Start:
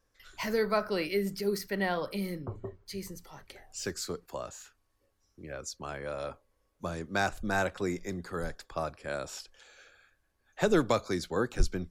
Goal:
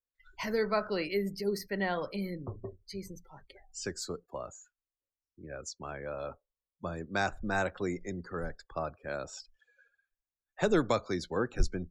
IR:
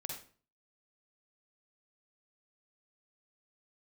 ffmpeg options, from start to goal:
-af "afftdn=noise_reduction=27:noise_floor=-47,volume=-1.5dB"

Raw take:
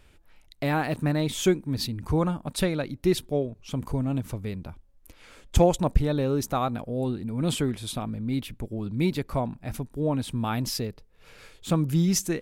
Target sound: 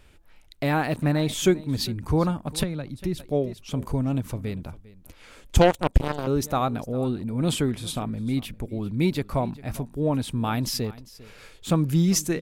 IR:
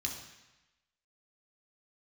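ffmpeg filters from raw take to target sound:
-filter_complex "[0:a]aecho=1:1:400:0.106,asettb=1/sr,asplit=3[link_01][link_02][link_03];[link_01]atrim=end=2.634[link_04];[link_02]atrim=start=2.63:end=3.2,asetpts=PTS-STARTPTS,afade=type=in:duration=0.004:curve=qsin,afade=type=out:start_time=0.566:duration=0.004:curve=qsin,acrossover=split=190[link_05][link_06];[link_06]acompressor=threshold=-39dB:ratio=2.5[link_07];[link_05][link_07]amix=inputs=2:normalize=0[link_08];[link_03]atrim=start=3.196[link_09];[link_04][link_08]acrossfade=duration=0.004:curve1=hsin:curve2=qsin[link_10];[link_10][link_09]acrossfade=duration=0.004:curve1=qsin:curve2=hsin,asettb=1/sr,asplit=3[link_11][link_12][link_13];[link_11]atrim=end=5.614[link_14];[link_12]atrim=start=5.61:end=6.27,asetpts=PTS-STARTPTS,afade=type=in:duration=0.004:curve=qsin,afade=type=out:start_time=0.656:duration=0.004:curve=qsin,aeval=exprs='0.376*(cos(1*acos(clip(val(0)/0.376,-1,1)))-cos(1*PI/2))+0.0668*(cos(7*acos(clip(val(0)/0.376,-1,1)))-cos(7*PI/2))':channel_layout=same[link_15];[link_13]atrim=start=6.266[link_16];[link_14][link_15]acrossfade=duration=0.004:curve1=hsin:curve2=qsin[link_17];[link_17][link_16]acrossfade=duration=0.004:curve1=qsin:curve2=hsin,volume=2dB"

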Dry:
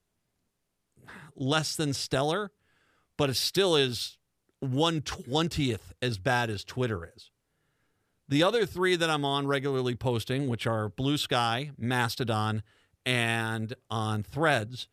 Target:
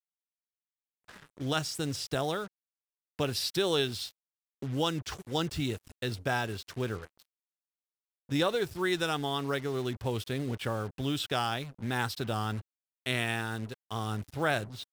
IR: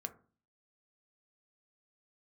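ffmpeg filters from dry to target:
-af "acrusher=bits=6:mix=0:aa=0.5,volume=-4dB"

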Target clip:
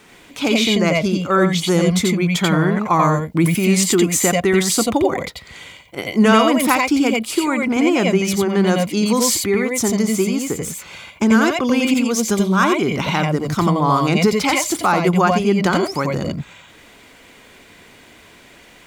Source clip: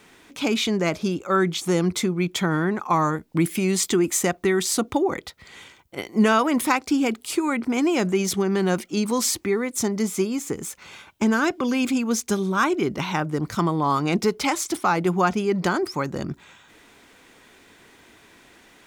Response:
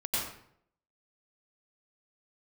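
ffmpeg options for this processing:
-filter_complex "[1:a]atrim=start_sample=2205,atrim=end_sample=3969[link_01];[0:a][link_01]afir=irnorm=-1:irlink=0,asettb=1/sr,asplit=3[link_02][link_03][link_04];[link_02]atrim=end=7.194[link_05];[link_03]atrim=start=7.19:end=8.67,asetpts=PTS-STARTPTS,afade=type=in:duration=0.004:curve=qsin,afade=type=out:start_time=1.476:duration=0.004:curve=qsin,adynamicequalizer=threshold=0.00708:dfrequency=3200:dqfactor=0.7:tfrequency=3200:tqfactor=0.7:attack=5:release=100:ratio=0.375:range=2:mode=cutabove:tftype=highshelf[link_06];[link_04]atrim=start=8.666[link_07];[link_05][link_06]acrossfade=duration=0.004:curve1=hsin:curve2=qsin[link_08];[link_08][link_07]acrossfade=duration=0.004:curve1=qsin:curve2=hsin,volume=7dB"

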